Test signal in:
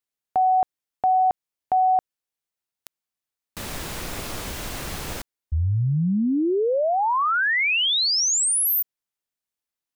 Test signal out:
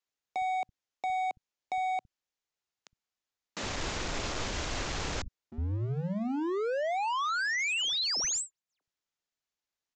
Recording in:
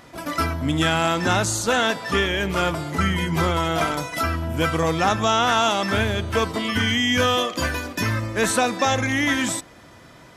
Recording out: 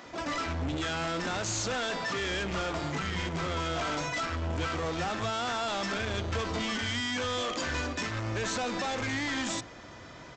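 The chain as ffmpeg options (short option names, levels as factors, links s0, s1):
-filter_complex "[0:a]acompressor=threshold=0.0562:ratio=16:attack=5.2:release=24:knee=1:detection=peak,aresample=16000,asoftclip=type=hard:threshold=0.0335,aresample=44100,acrossover=split=170[s0][s1];[s0]adelay=60[s2];[s2][s1]amix=inputs=2:normalize=0"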